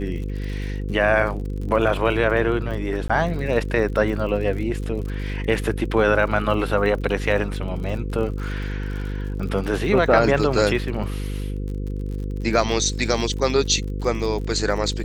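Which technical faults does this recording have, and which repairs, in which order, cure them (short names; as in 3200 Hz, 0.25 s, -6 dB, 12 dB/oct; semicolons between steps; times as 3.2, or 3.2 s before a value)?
buzz 50 Hz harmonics 10 -27 dBFS
crackle 52/s -31 dBFS
3.08–3.1 gap 15 ms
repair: de-click; de-hum 50 Hz, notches 10; interpolate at 3.08, 15 ms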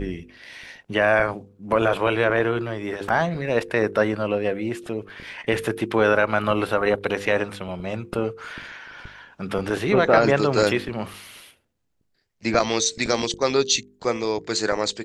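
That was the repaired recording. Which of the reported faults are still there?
none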